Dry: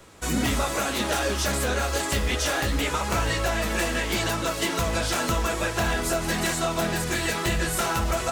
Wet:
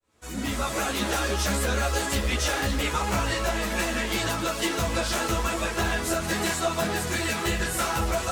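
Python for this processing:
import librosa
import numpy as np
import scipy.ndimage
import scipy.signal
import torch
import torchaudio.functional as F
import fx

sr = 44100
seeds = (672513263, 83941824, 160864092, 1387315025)

y = fx.fade_in_head(x, sr, length_s=0.79)
y = y + 10.0 ** (-15.5 / 20.0) * np.pad(y, (int(277 * sr / 1000.0), 0))[:len(y)]
y = fx.ensemble(y, sr)
y = y * 10.0 ** (2.0 / 20.0)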